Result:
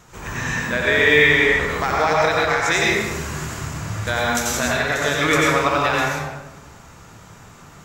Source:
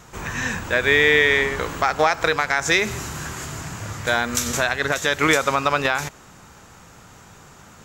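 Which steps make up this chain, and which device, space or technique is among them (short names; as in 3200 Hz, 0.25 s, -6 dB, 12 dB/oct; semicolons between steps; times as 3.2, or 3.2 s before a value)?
bathroom (reverb RT60 1.2 s, pre-delay 84 ms, DRR -4 dB); gain -3.5 dB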